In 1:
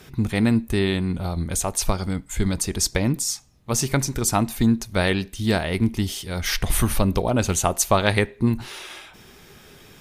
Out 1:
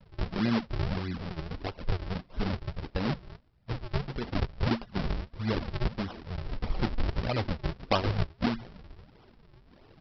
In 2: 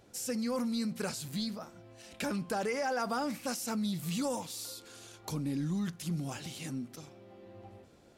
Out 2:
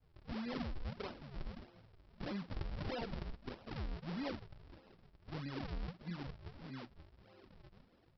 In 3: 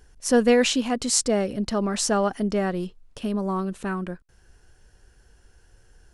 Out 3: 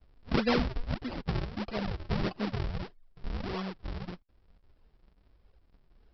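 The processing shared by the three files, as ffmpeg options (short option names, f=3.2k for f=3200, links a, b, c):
-af "aresample=11025,acrusher=samples=26:mix=1:aa=0.000001:lfo=1:lforange=41.6:lforate=1.6,aresample=44100,flanger=delay=1.2:depth=4.7:regen=-41:speed=1.1:shape=triangular,volume=-4.5dB"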